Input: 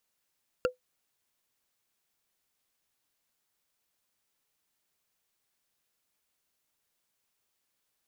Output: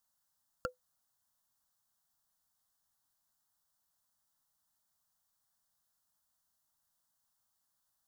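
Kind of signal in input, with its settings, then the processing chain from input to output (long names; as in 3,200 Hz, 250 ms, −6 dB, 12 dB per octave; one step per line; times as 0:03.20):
struck wood, lowest mode 503 Hz, decay 0.13 s, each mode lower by 4 dB, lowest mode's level −19 dB
phaser with its sweep stopped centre 1,000 Hz, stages 4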